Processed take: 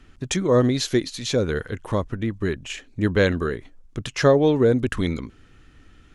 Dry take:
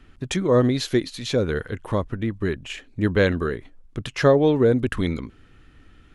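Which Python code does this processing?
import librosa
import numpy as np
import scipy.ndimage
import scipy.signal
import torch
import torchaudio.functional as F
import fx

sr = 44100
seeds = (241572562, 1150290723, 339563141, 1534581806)

y = fx.peak_eq(x, sr, hz=6400.0, db=6.0, octaves=0.85)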